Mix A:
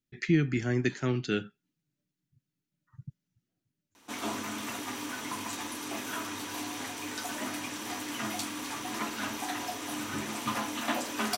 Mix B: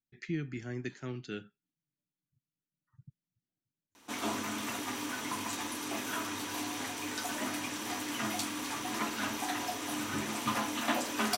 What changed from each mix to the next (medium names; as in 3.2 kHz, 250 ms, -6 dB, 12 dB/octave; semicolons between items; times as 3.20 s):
speech -10.5 dB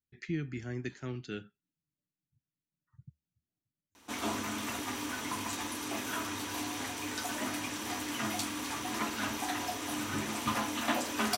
master: add peaking EQ 75 Hz +13.5 dB 0.47 oct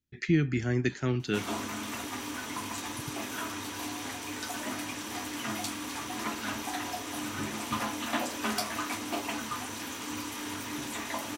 speech +10.0 dB; background: entry -2.75 s